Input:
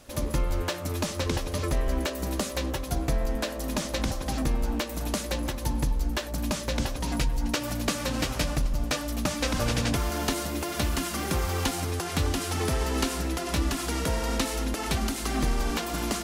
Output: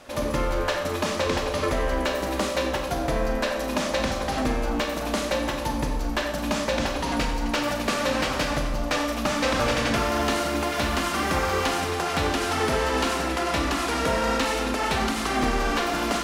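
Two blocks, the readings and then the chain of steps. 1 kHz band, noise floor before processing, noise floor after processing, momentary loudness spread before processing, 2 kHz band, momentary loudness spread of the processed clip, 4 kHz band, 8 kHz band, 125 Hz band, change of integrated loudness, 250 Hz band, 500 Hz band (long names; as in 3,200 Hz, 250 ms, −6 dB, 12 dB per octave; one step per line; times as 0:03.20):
+8.5 dB, −35 dBFS, −29 dBFS, 3 LU, +7.5 dB, 3 LU, +4.0 dB, −0.5 dB, −2.5 dB, +4.0 dB, +3.0 dB, +7.0 dB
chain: mid-hump overdrive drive 15 dB, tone 1,800 Hz, clips at −11 dBFS
gain into a clipping stage and back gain 18.5 dB
four-comb reverb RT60 0.85 s, combs from 28 ms, DRR 3.5 dB
level +1 dB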